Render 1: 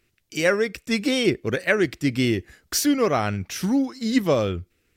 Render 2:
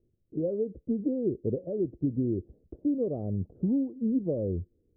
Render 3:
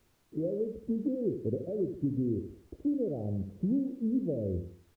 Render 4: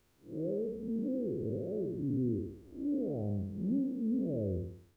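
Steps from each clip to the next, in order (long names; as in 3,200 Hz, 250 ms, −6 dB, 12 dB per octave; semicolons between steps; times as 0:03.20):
downward compressor, threshold −24 dBFS, peak gain reduction 10 dB; Butterworth low-pass 550 Hz 36 dB per octave
treble cut that deepens with the level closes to 660 Hz; repeating echo 75 ms, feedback 38%, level −8.5 dB; background noise pink −68 dBFS; level −2.5 dB
spectrum smeared in time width 158 ms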